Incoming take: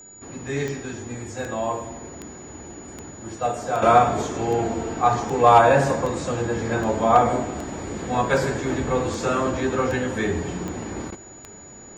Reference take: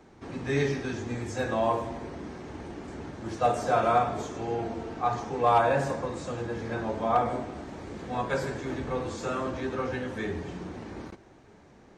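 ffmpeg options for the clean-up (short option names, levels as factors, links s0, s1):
-af "adeclick=t=4,bandreject=f=6900:w=30,asetnsamples=n=441:p=0,asendcmd='3.82 volume volume -8.5dB',volume=1"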